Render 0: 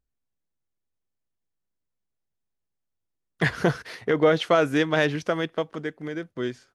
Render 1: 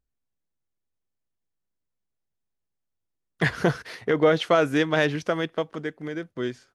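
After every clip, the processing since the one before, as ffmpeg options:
-af anull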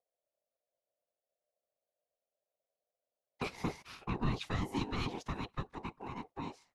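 -filter_complex "[0:a]afftfilt=real='hypot(re,im)*cos(2*PI*random(0))':imag='hypot(re,im)*sin(2*PI*random(1))':win_size=512:overlap=0.75,aeval=exprs='val(0)*sin(2*PI*600*n/s)':c=same,acrossover=split=400|3000[s0][s1][s2];[s1]acompressor=threshold=0.00794:ratio=6[s3];[s0][s3][s2]amix=inputs=3:normalize=0,volume=0.891"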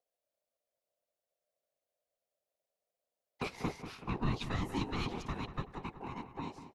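-filter_complex "[0:a]asplit=2[s0][s1];[s1]adelay=190,lowpass=f=2500:p=1,volume=0.299,asplit=2[s2][s3];[s3]adelay=190,lowpass=f=2500:p=1,volume=0.49,asplit=2[s4][s5];[s5]adelay=190,lowpass=f=2500:p=1,volume=0.49,asplit=2[s6][s7];[s7]adelay=190,lowpass=f=2500:p=1,volume=0.49,asplit=2[s8][s9];[s9]adelay=190,lowpass=f=2500:p=1,volume=0.49[s10];[s0][s2][s4][s6][s8][s10]amix=inputs=6:normalize=0"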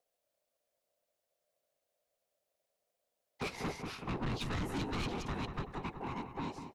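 -af "asoftclip=type=tanh:threshold=0.0133,volume=1.78"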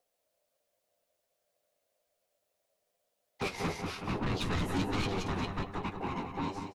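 -filter_complex "[0:a]flanger=delay=9.5:depth=2.5:regen=50:speed=1.2:shape=triangular,asplit=2[s0][s1];[s1]aecho=0:1:180:0.335[s2];[s0][s2]amix=inputs=2:normalize=0,volume=2.51"

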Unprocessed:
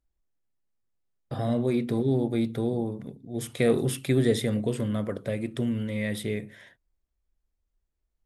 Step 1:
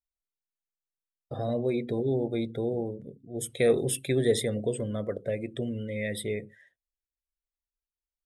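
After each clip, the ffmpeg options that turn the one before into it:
-af "afftdn=nr=20:nf=-42,equalizer=f=125:t=o:w=1:g=-4,equalizer=f=250:t=o:w=1:g=-6,equalizer=f=500:t=o:w=1:g=4,equalizer=f=1000:t=o:w=1:g=-6,equalizer=f=8000:t=o:w=1:g=7"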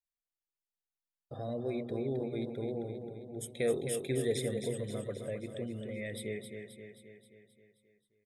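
-af "aecho=1:1:265|530|795|1060|1325|1590|1855:0.447|0.255|0.145|0.0827|0.0472|0.0269|0.0153,volume=0.398"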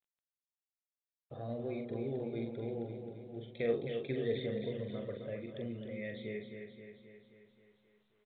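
-filter_complex "[0:a]asplit=2[s0][s1];[s1]adelay=43,volume=0.501[s2];[s0][s2]amix=inputs=2:normalize=0,volume=0.668" -ar 8000 -c:a pcm_mulaw

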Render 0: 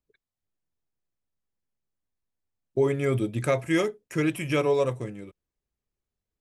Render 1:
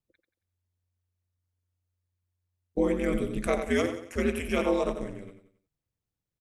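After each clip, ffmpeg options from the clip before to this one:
-af "aecho=1:1:91|182|273|364:0.398|0.147|0.0545|0.0202,aeval=exprs='val(0)*sin(2*PI*90*n/s)':c=same"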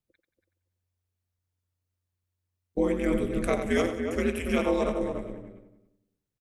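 -filter_complex "[0:a]asplit=2[s0][s1];[s1]adelay=285,lowpass=f=1100:p=1,volume=0.596,asplit=2[s2][s3];[s3]adelay=285,lowpass=f=1100:p=1,volume=0.16,asplit=2[s4][s5];[s5]adelay=285,lowpass=f=1100:p=1,volume=0.16[s6];[s0][s2][s4][s6]amix=inputs=4:normalize=0"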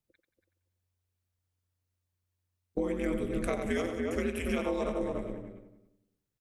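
-af "acompressor=threshold=0.0398:ratio=4"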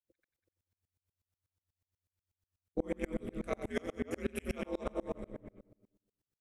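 -af "aeval=exprs='val(0)*pow(10,-33*if(lt(mod(-8.2*n/s,1),2*abs(-8.2)/1000),1-mod(-8.2*n/s,1)/(2*abs(-8.2)/1000),(mod(-8.2*n/s,1)-2*abs(-8.2)/1000)/(1-2*abs(-8.2)/1000))/20)':c=same,volume=1.26"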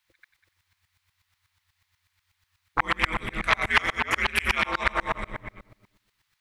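-af "aeval=exprs='0.119*sin(PI/2*3.16*val(0)/0.119)':c=same,equalizer=f=250:t=o:w=1:g=-10,equalizer=f=500:t=o:w=1:g=-12,equalizer=f=1000:t=o:w=1:g=10,equalizer=f=2000:t=o:w=1:g=12,equalizer=f=4000:t=o:w=1:g=8"

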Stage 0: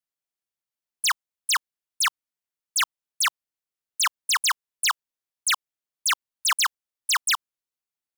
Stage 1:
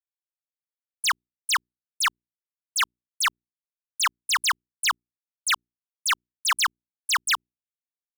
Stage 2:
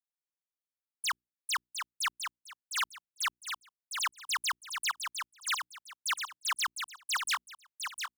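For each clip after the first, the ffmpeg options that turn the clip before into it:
-af "bass=f=250:g=8,treble=f=4000:g=-4,aeval=exprs='sgn(val(0))*max(abs(val(0))-0.00141,0)':c=same,bandreject=f=60:t=h:w=6,bandreject=f=120:t=h:w=6,bandreject=f=180:t=h:w=6,bandreject=f=240:t=h:w=6,bandreject=f=300:t=h:w=6,bandreject=f=360:t=h:w=6,bandreject=f=420:t=h:w=6,volume=1.12"
-af "aecho=1:1:707|1414|2121:0.501|0.12|0.0289,volume=0.355"

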